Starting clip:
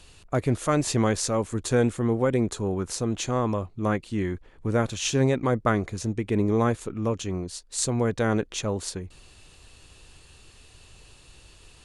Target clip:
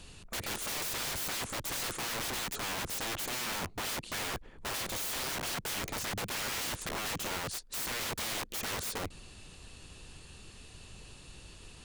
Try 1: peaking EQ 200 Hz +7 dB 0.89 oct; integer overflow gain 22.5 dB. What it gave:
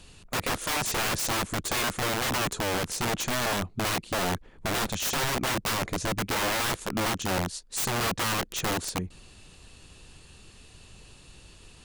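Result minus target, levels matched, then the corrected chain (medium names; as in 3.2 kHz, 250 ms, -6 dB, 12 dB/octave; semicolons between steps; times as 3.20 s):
integer overflow: distortion -14 dB
peaking EQ 200 Hz +7 dB 0.89 oct; integer overflow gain 31 dB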